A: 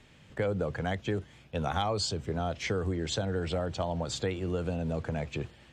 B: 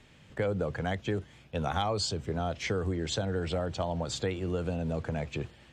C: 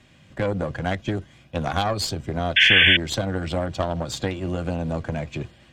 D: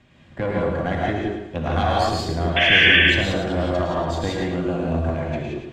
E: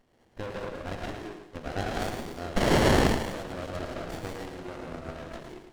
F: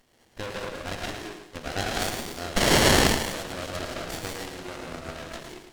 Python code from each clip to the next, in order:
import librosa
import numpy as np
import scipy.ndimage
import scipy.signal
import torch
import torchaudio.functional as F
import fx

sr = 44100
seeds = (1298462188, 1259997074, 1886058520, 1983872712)

y1 = x
y2 = fx.notch_comb(y1, sr, f0_hz=440.0)
y2 = fx.cheby_harmonics(y2, sr, harmonics=(2, 5, 7), levels_db=(-6, -22, -22), full_scale_db=-17.5)
y2 = fx.spec_paint(y2, sr, seeds[0], shape='noise', start_s=2.56, length_s=0.41, low_hz=1500.0, high_hz=3500.0, level_db=-21.0)
y2 = y2 * 10.0 ** (6.0 / 20.0)
y3 = fx.lowpass(y2, sr, hz=2500.0, slope=6)
y3 = fx.echo_feedback(y3, sr, ms=109, feedback_pct=36, wet_db=-6.5)
y3 = fx.rev_gated(y3, sr, seeds[1], gate_ms=200, shape='rising', drr_db=-3.0)
y3 = y3 * 10.0 ** (-1.0 / 20.0)
y4 = fx.highpass(y3, sr, hz=1400.0, slope=6)
y4 = fx.high_shelf(y4, sr, hz=6200.0, db=9.5)
y4 = fx.running_max(y4, sr, window=33)
y4 = y4 * 10.0 ** (-2.0 / 20.0)
y5 = fx.peak_eq(y4, sr, hz=16000.0, db=12.5, octaves=2.6)